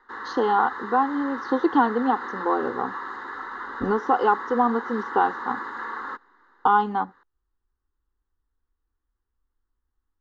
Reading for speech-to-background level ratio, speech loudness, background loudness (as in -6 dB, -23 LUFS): 9.5 dB, -24.0 LUFS, -33.5 LUFS